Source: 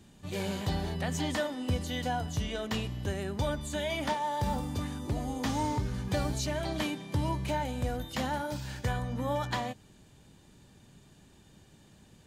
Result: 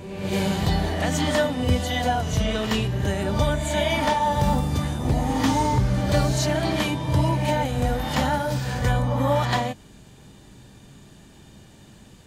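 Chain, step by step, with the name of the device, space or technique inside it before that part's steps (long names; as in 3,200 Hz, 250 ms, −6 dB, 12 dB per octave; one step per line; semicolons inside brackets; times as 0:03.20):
reverse reverb (reversed playback; convolution reverb RT60 1.5 s, pre-delay 11 ms, DRR 3 dB; reversed playback)
level +8 dB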